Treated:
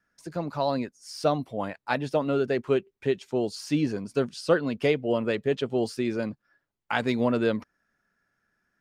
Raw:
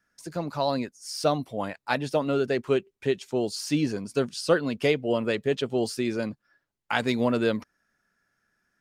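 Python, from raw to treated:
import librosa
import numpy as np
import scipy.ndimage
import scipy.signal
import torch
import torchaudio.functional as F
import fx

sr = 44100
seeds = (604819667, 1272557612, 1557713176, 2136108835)

y = fx.high_shelf(x, sr, hz=4100.0, db=-8.0)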